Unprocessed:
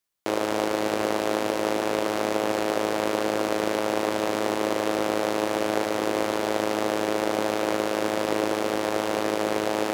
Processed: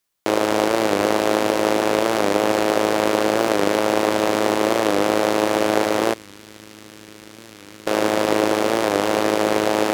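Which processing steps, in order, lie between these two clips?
0:06.14–0:07.87: guitar amp tone stack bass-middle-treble 6-0-2
wow of a warped record 45 rpm, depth 100 cents
level +6.5 dB

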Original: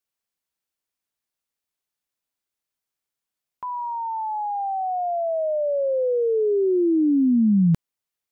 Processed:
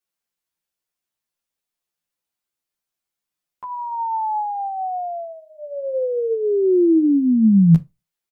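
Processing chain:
convolution reverb RT60 0.20 s, pre-delay 6 ms, DRR 11 dB
barber-pole flanger 11.1 ms −2.8 Hz
level +3.5 dB

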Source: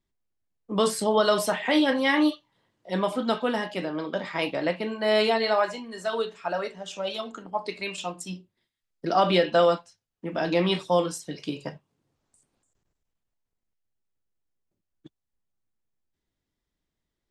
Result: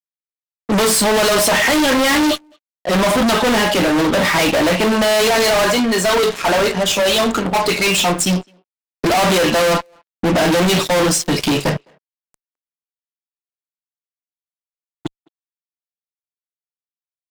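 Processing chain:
0:09.74–0:11.26: low-pass that shuts in the quiet parts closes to 2,900 Hz, open at −19.5 dBFS
fuzz pedal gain 42 dB, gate −50 dBFS
far-end echo of a speakerphone 210 ms, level −27 dB

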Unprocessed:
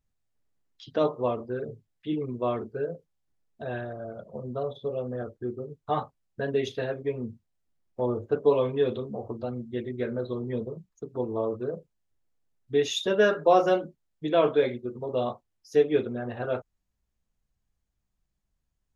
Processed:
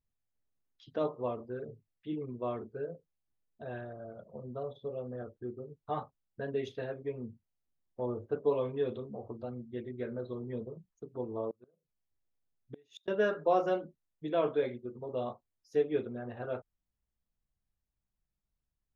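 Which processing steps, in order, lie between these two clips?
high-shelf EQ 3,600 Hz −8 dB
0:11.50–0:13.08: gate with flip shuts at −24 dBFS, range −32 dB
level −7.5 dB

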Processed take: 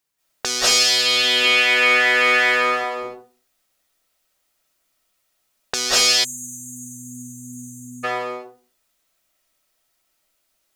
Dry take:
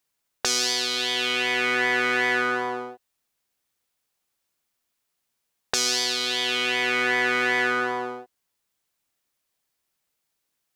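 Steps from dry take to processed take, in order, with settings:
0:01.24–0:02.84: high-pass filter 200 Hz 12 dB per octave
convolution reverb RT60 0.35 s, pre-delay 157 ms, DRR −8.5 dB
0:06.24–0:08.04: time-frequency box erased 300–6,000 Hz

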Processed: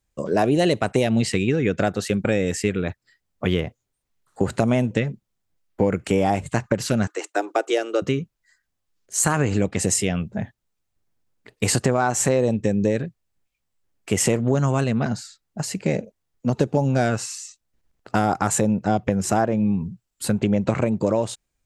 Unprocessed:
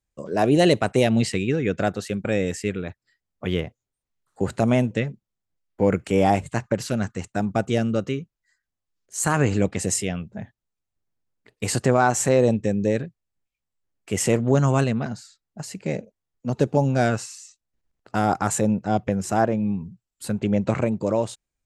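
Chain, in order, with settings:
0:07.07–0:08.02: Chebyshev high-pass filter 310 Hz, order 6
downward compressor 4 to 1, threshold −24 dBFS, peak gain reduction 10 dB
level +7 dB

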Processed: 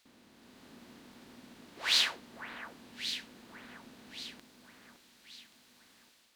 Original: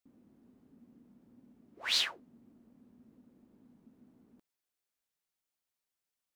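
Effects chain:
compressor on every frequency bin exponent 0.6
delay that swaps between a low-pass and a high-pass 564 ms, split 1,800 Hz, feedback 63%, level −6 dB
automatic gain control gain up to 6 dB
level −4.5 dB

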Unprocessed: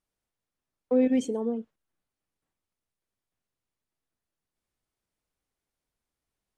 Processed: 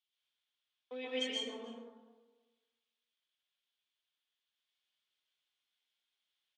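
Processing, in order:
resonant band-pass 3,300 Hz, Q 5.3
single-tap delay 306 ms −22 dB
dense smooth reverb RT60 1.3 s, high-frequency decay 0.35×, pre-delay 115 ms, DRR −6 dB
level +10 dB

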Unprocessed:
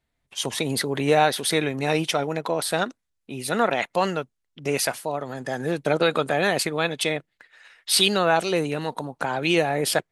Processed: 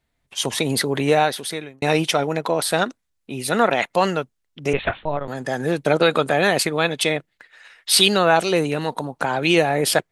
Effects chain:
0:00.94–0:01.82: fade out
0:04.73–0:05.28: linear-prediction vocoder at 8 kHz pitch kept
level +4 dB

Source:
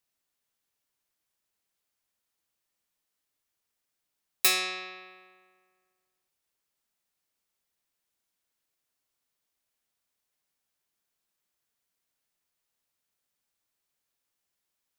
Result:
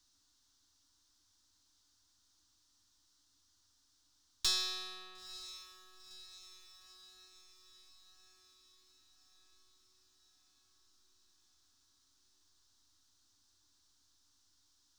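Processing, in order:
gain on one half-wave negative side −3 dB
drawn EQ curve 100 Hz 0 dB, 160 Hz −21 dB, 290 Hz −1 dB, 500 Hz −27 dB, 940 Hz −10 dB, 1,500 Hz −10 dB, 2,300 Hz −23 dB, 3,700 Hz −3 dB, 5,800 Hz 0 dB, 12,000 Hz −21 dB
power curve on the samples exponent 0.7
feedback delay with all-pass diffusion 956 ms, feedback 59%, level −14.5 dB
highs frequency-modulated by the lows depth 0.22 ms
level −3 dB

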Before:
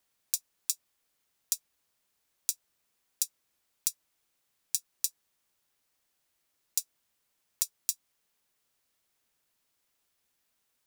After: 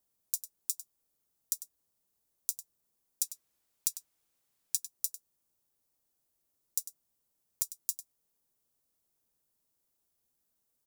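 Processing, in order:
parametric band 2,300 Hz −13.5 dB 2.6 octaves, from 0:03.22 −5 dB, from 0:04.77 −13.5 dB
single-tap delay 99 ms −13.5 dB

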